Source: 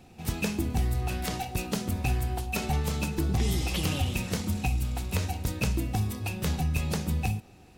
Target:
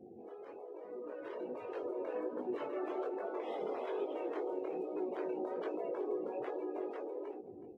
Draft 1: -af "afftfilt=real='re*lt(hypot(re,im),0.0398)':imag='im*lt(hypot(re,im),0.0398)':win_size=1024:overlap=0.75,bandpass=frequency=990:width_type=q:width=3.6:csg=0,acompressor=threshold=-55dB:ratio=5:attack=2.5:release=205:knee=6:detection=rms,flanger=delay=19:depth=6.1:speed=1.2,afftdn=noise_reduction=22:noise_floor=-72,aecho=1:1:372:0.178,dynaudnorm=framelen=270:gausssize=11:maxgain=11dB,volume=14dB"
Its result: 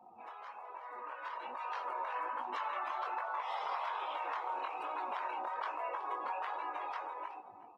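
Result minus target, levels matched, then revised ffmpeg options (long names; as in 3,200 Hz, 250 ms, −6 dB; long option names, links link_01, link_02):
500 Hz band −11.0 dB
-af "afftfilt=real='re*lt(hypot(re,im),0.0398)':imag='im*lt(hypot(re,im),0.0398)':win_size=1024:overlap=0.75,bandpass=frequency=400:width_type=q:width=3.6:csg=0,acompressor=threshold=-55dB:ratio=5:attack=2.5:release=205:knee=6:detection=rms,flanger=delay=19:depth=6.1:speed=1.2,afftdn=noise_reduction=22:noise_floor=-72,aecho=1:1:372:0.178,dynaudnorm=framelen=270:gausssize=11:maxgain=11dB,volume=14dB"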